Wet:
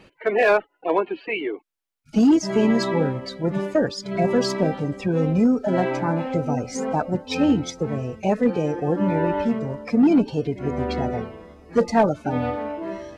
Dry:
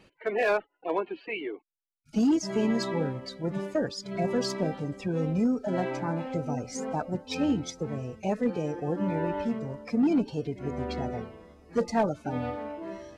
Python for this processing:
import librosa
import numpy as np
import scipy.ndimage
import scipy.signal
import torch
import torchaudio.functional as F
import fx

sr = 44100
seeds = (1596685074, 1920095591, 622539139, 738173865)

y = fx.bass_treble(x, sr, bass_db=-1, treble_db=-4)
y = y * librosa.db_to_amplitude(8.0)